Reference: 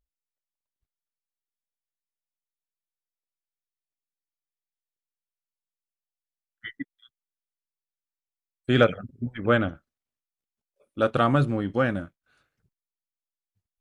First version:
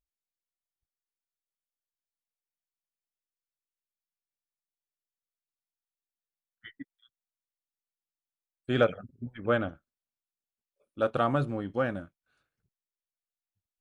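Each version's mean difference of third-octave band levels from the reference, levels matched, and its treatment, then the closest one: 1.5 dB: band-stop 2 kHz, Q 21; dynamic bell 700 Hz, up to +5 dB, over -32 dBFS, Q 0.81; trim -8 dB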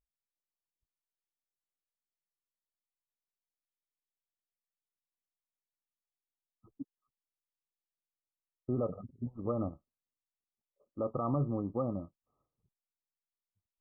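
7.0 dB: peak limiter -14.5 dBFS, peak gain reduction 9 dB; brick-wall FIR low-pass 1.3 kHz; trim -7.5 dB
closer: first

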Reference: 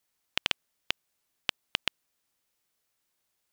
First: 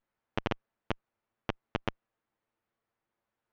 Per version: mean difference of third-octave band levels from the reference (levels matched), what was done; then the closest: 13.0 dB: comb filter that takes the minimum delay 8.9 ms; low-pass 1.5 kHz 12 dB/octave; trim +3.5 dB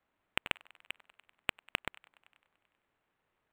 6.5 dB: feedback echo behind a band-pass 97 ms, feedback 68%, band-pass 1.4 kHz, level -20 dB; decimation joined by straight lines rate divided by 8×; trim -1.5 dB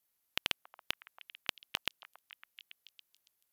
1.5 dB: peaking EQ 12 kHz +13.5 dB 0.31 oct; repeats whose band climbs or falls 279 ms, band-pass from 920 Hz, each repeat 0.7 oct, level -11 dB; trim -5.5 dB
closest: third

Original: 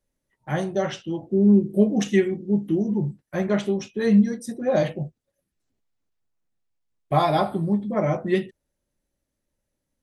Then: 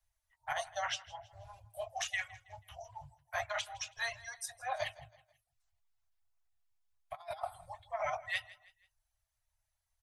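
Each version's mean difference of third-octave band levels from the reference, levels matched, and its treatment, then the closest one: 15.0 dB: reverb removal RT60 0.58 s; Chebyshev band-stop 110–660 Hz, order 5; compressor with a negative ratio -32 dBFS, ratio -0.5; on a send: feedback delay 162 ms, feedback 41%, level -20 dB; on the sum: trim -4 dB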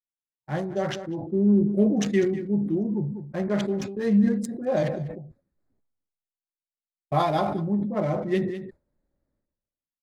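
3.5 dB: local Wiener filter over 15 samples; expander -36 dBFS; on a send: delay 197 ms -18.5 dB; on the sum: decay stretcher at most 55 dB/s; trim -3.5 dB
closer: second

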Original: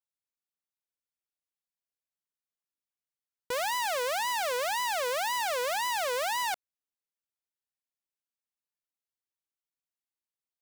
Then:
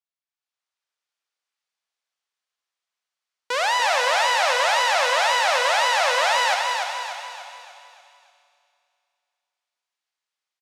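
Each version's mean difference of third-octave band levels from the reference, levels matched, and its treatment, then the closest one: 8.5 dB: level rider gain up to 10 dB; band-pass 680–5900 Hz; on a send: feedback delay 293 ms, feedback 46%, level -5 dB; on the sum: Schroeder reverb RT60 2.6 s, combs from 26 ms, DRR 5 dB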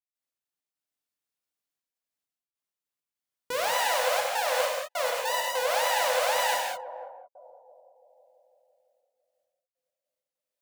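5.5 dB: bass shelf 68 Hz -7 dB; on a send: band-passed feedback delay 167 ms, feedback 75%, band-pass 550 Hz, level -7 dB; on the sum: trance gate ".x.x.xxxxxxx.xx." 100 bpm -60 dB; gated-style reverb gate 240 ms flat, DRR -2 dB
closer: second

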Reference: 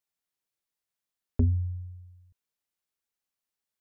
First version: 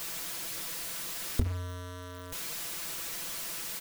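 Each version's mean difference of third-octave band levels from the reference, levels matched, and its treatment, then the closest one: 20.5 dB: jump at every zero crossing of -32 dBFS; band-stop 810 Hz, Q 12; comb 6 ms, depth 75%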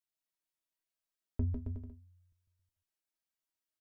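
4.5 dB: feedback comb 320 Hz, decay 0.17 s, harmonics all, mix 80%; bouncing-ball echo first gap 150 ms, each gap 0.8×, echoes 5; trim +2 dB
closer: second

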